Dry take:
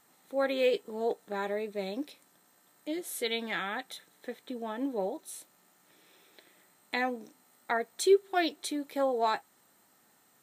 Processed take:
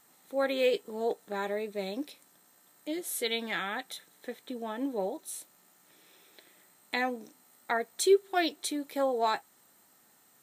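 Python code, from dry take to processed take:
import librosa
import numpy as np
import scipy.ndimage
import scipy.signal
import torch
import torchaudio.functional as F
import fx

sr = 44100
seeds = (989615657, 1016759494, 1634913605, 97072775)

y = fx.high_shelf(x, sr, hz=4900.0, db=4.5)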